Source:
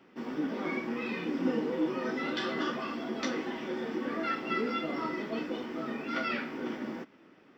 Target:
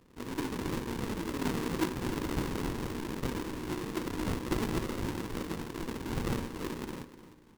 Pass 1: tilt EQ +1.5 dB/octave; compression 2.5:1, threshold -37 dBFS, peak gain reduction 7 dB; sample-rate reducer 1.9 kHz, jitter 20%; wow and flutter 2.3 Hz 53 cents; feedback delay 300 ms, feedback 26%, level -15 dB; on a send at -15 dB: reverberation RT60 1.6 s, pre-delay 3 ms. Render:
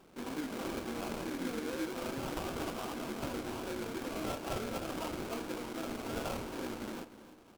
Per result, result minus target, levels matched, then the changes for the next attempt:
sample-rate reducer: distortion -20 dB; compression: peak gain reduction +7 dB
change: sample-rate reducer 680 Hz, jitter 20%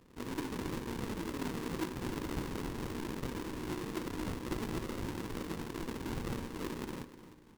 compression: peak gain reduction +7 dB
remove: compression 2.5:1, threshold -37 dBFS, peak gain reduction 7 dB

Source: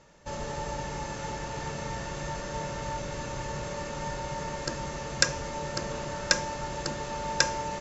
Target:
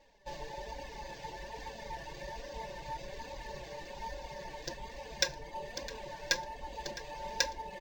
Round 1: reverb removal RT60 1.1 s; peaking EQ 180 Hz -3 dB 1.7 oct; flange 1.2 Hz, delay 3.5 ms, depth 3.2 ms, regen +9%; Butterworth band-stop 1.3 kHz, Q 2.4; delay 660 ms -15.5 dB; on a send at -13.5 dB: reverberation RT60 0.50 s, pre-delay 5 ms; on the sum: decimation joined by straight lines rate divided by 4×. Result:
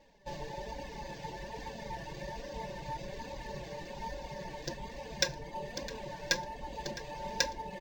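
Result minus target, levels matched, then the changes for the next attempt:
250 Hz band +5.5 dB
change: peaking EQ 180 Hz -11.5 dB 1.7 oct

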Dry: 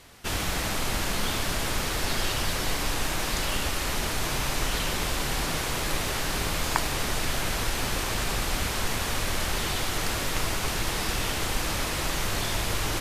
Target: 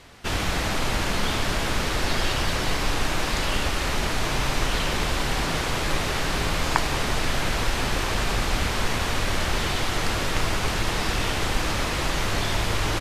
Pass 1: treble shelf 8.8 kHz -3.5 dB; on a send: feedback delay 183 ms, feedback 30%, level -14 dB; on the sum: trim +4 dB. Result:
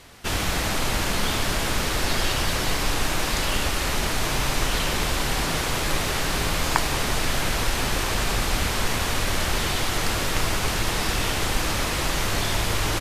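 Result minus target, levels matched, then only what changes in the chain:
8 kHz band +3.0 dB
change: treble shelf 8.8 kHz -14 dB

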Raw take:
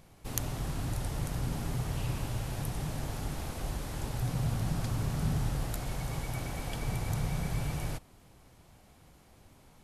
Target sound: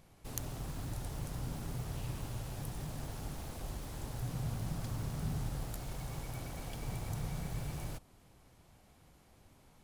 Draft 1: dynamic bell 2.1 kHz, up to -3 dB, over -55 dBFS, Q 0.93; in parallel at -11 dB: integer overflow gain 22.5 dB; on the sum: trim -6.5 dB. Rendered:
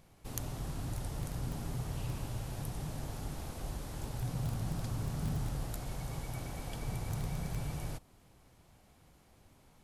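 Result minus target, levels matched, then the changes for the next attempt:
integer overflow: distortion -37 dB
change: integer overflow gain 34 dB

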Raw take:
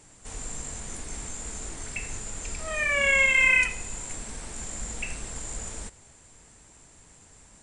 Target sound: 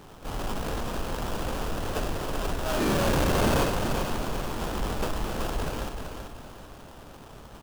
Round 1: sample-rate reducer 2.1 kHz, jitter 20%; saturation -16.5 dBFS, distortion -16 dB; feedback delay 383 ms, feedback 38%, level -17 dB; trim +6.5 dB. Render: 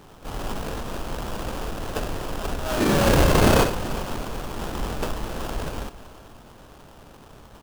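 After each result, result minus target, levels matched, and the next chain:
saturation: distortion -11 dB; echo-to-direct -10.5 dB
sample-rate reducer 2.1 kHz, jitter 20%; saturation -28.5 dBFS, distortion -5 dB; feedback delay 383 ms, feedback 38%, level -17 dB; trim +6.5 dB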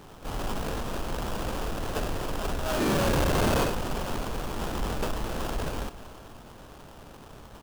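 echo-to-direct -10.5 dB
sample-rate reducer 2.1 kHz, jitter 20%; saturation -28.5 dBFS, distortion -5 dB; feedback delay 383 ms, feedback 38%, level -6.5 dB; trim +6.5 dB

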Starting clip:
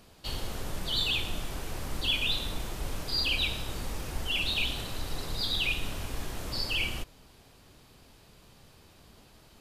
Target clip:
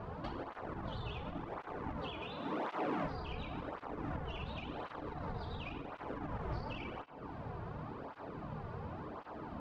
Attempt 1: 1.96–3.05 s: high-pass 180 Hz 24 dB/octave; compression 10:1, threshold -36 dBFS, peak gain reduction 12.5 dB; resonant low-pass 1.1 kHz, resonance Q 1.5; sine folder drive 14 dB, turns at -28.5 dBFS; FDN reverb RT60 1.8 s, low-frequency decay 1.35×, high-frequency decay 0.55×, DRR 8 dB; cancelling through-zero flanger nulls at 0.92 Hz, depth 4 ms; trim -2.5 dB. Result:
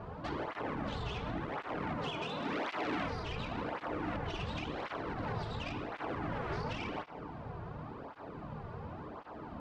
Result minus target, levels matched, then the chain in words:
compression: peak gain reduction -6.5 dB
1.96–3.05 s: high-pass 180 Hz 24 dB/octave; compression 10:1, threshold -43.5 dBFS, peak gain reduction 19 dB; resonant low-pass 1.1 kHz, resonance Q 1.5; sine folder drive 14 dB, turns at -28.5 dBFS; FDN reverb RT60 1.8 s, low-frequency decay 1.35×, high-frequency decay 0.55×, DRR 8 dB; cancelling through-zero flanger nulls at 0.92 Hz, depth 4 ms; trim -2.5 dB

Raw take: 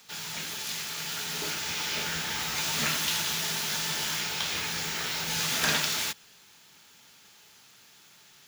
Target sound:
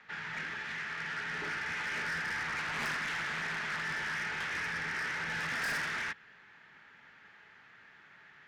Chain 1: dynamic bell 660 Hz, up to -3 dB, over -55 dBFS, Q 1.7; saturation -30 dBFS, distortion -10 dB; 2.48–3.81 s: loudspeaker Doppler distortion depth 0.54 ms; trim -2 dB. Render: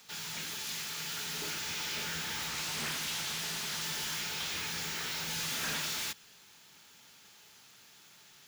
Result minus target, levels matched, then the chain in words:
2 kHz band -7.0 dB
dynamic bell 660 Hz, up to -3 dB, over -55 dBFS, Q 1.7; resonant low-pass 1.8 kHz, resonance Q 3.8; saturation -30 dBFS, distortion -7 dB; 2.48–3.81 s: loudspeaker Doppler distortion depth 0.54 ms; trim -2 dB

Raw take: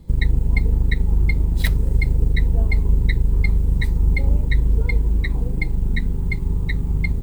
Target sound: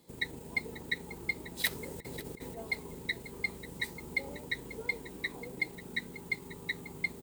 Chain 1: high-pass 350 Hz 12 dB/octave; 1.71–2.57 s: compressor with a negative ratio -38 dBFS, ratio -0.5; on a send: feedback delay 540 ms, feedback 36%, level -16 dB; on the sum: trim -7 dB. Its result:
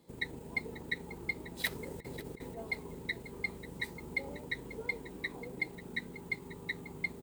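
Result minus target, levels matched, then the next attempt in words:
8 kHz band -4.0 dB
high-pass 350 Hz 12 dB/octave; treble shelf 3 kHz +7 dB; 1.71–2.57 s: compressor with a negative ratio -38 dBFS, ratio -0.5; on a send: feedback delay 540 ms, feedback 36%, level -16 dB; on the sum: trim -7 dB

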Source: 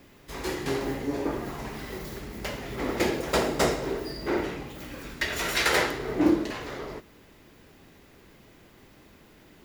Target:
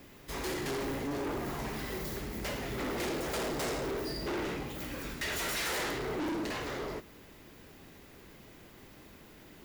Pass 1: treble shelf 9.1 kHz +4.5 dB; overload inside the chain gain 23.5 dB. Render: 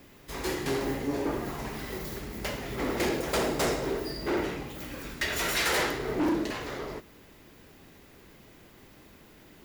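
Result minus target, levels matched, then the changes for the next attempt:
overload inside the chain: distortion -6 dB
change: overload inside the chain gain 32.5 dB

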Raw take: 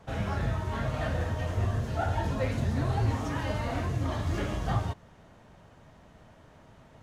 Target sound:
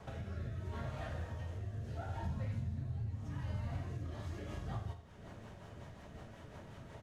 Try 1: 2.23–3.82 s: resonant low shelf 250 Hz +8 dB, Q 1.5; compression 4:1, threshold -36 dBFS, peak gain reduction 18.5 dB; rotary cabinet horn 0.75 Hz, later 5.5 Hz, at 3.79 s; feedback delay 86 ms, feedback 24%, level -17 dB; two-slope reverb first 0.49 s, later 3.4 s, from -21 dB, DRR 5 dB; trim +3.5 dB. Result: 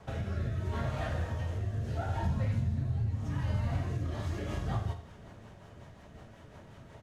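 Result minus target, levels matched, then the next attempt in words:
compression: peak gain reduction -8 dB
2.23–3.82 s: resonant low shelf 250 Hz +8 dB, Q 1.5; compression 4:1, threshold -47 dBFS, peak gain reduction 26.5 dB; rotary cabinet horn 0.75 Hz, later 5.5 Hz, at 3.79 s; feedback delay 86 ms, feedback 24%, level -17 dB; two-slope reverb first 0.49 s, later 3.4 s, from -21 dB, DRR 5 dB; trim +3.5 dB

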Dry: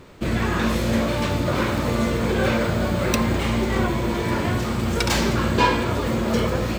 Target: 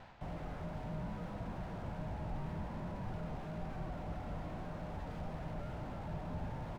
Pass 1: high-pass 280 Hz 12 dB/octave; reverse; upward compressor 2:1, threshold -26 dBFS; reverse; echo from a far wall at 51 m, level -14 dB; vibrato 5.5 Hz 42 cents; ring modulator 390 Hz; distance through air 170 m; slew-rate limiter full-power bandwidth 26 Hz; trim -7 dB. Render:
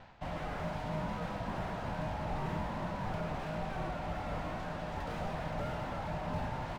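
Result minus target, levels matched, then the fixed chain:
slew-rate limiter: distortion -6 dB
high-pass 280 Hz 12 dB/octave; reverse; upward compressor 2:1, threshold -26 dBFS; reverse; echo from a far wall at 51 m, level -14 dB; vibrato 5.5 Hz 42 cents; ring modulator 390 Hz; distance through air 170 m; slew-rate limiter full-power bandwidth 8 Hz; trim -7 dB

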